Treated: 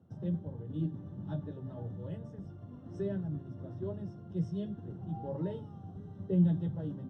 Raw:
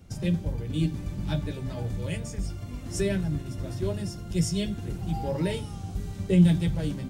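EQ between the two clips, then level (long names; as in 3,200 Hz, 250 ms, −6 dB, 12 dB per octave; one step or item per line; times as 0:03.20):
moving average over 19 samples
high-pass filter 100 Hz 24 dB per octave
high-frequency loss of the air 73 metres
−7.5 dB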